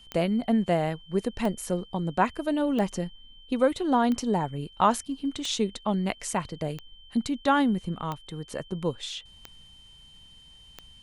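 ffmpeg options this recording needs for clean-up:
-af "adeclick=t=4,bandreject=f=3.1k:w=30"

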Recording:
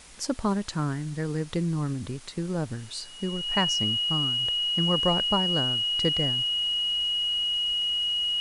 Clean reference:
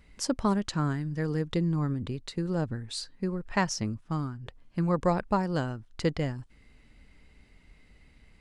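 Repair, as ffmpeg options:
-af "bandreject=f=2.9k:w=30,afwtdn=0.004"

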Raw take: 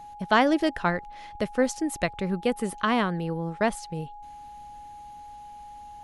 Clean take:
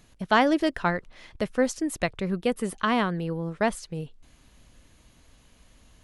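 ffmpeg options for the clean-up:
-af "bandreject=f=830:w=30"

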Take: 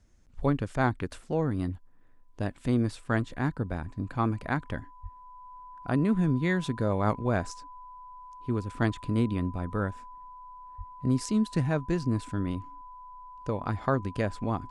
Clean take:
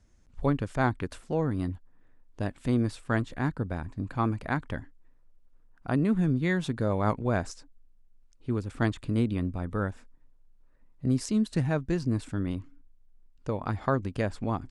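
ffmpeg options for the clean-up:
-filter_complex "[0:a]bandreject=f=1k:w=30,asplit=3[a][b][c];[a]afade=t=out:st=3.69:d=0.02[d];[b]highpass=f=140:w=0.5412,highpass=f=140:w=1.3066,afade=t=in:st=3.69:d=0.02,afade=t=out:st=3.81:d=0.02[e];[c]afade=t=in:st=3.81:d=0.02[f];[d][e][f]amix=inputs=3:normalize=0,asplit=3[g][h][i];[g]afade=t=out:st=5.02:d=0.02[j];[h]highpass=f=140:w=0.5412,highpass=f=140:w=1.3066,afade=t=in:st=5.02:d=0.02,afade=t=out:st=5.14:d=0.02[k];[i]afade=t=in:st=5.14:d=0.02[l];[j][k][l]amix=inputs=3:normalize=0,asplit=3[m][n][o];[m]afade=t=out:st=10.77:d=0.02[p];[n]highpass=f=140:w=0.5412,highpass=f=140:w=1.3066,afade=t=in:st=10.77:d=0.02,afade=t=out:st=10.89:d=0.02[q];[o]afade=t=in:st=10.89:d=0.02[r];[p][q][r]amix=inputs=3:normalize=0"

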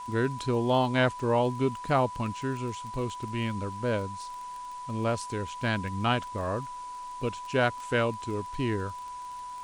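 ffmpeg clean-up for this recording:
-af "adeclick=t=4,bandreject=f=990:w=30,afwtdn=0.0022"

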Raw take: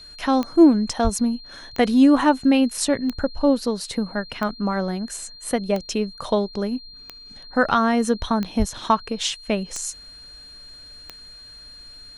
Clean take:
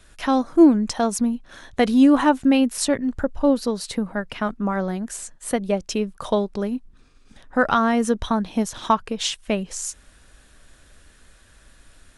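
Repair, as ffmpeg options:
-filter_complex "[0:a]adeclick=t=4,bandreject=f=4.2k:w=30,asplit=3[a][b][c];[a]afade=t=out:st=1.03:d=0.02[d];[b]highpass=f=140:w=0.5412,highpass=f=140:w=1.3066,afade=t=in:st=1.03:d=0.02,afade=t=out:st=1.15:d=0.02[e];[c]afade=t=in:st=1.15:d=0.02[f];[d][e][f]amix=inputs=3:normalize=0,asplit=3[g][h][i];[g]afade=t=out:st=8.58:d=0.02[j];[h]highpass=f=140:w=0.5412,highpass=f=140:w=1.3066,afade=t=in:st=8.58:d=0.02,afade=t=out:st=8.7:d=0.02[k];[i]afade=t=in:st=8.7:d=0.02[l];[j][k][l]amix=inputs=3:normalize=0"

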